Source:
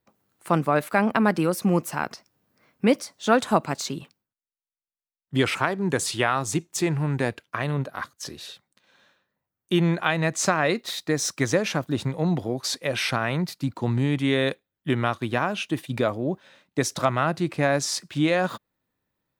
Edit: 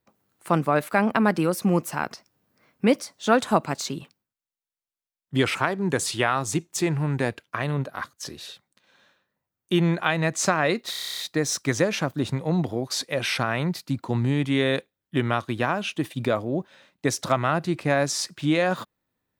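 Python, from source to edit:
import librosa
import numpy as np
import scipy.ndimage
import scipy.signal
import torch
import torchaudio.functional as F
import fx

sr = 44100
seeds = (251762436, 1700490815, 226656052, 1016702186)

y = fx.edit(x, sr, fx.stutter(start_s=10.91, slice_s=0.03, count=10), tone=tone)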